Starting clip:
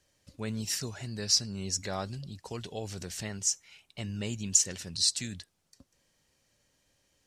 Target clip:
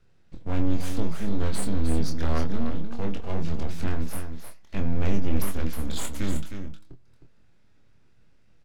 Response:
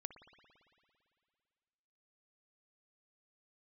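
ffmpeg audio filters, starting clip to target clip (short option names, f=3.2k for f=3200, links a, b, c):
-filter_complex "[0:a]bass=f=250:g=13,treble=f=4k:g=-13,aeval=exprs='abs(val(0))':c=same,flanger=delay=6.7:depth=3.1:regen=88:speed=0.51:shape=triangular,asetrate=37044,aresample=44100,asplit=2[a][b];[b]adelay=25,volume=-6dB[c];[a][c]amix=inputs=2:normalize=0,aecho=1:1:312:0.398,volume=7.5dB"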